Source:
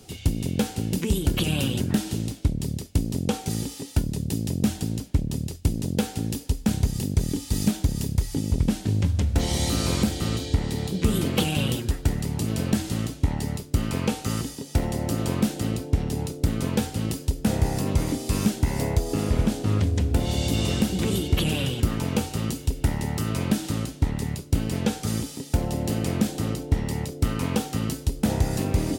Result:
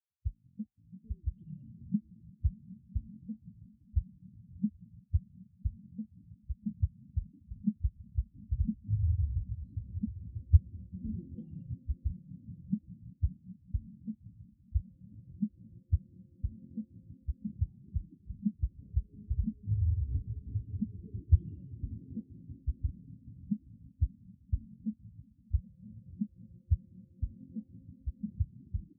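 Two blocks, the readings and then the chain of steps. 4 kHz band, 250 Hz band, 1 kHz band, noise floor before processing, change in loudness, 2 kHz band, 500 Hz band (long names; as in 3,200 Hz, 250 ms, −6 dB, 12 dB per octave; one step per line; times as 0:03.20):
below −40 dB, −15.5 dB, below −40 dB, −41 dBFS, −11.5 dB, below −40 dB, below −35 dB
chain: echo that builds up and dies away 195 ms, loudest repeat 5, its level −10 dB
every bin expanded away from the loudest bin 4 to 1
level −3 dB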